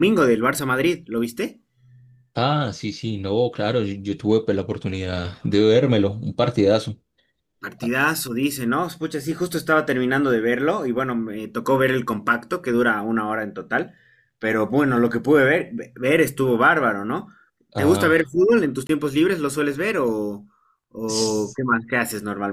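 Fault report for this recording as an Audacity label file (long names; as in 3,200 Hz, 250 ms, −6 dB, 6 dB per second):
18.870000	18.890000	drop-out 22 ms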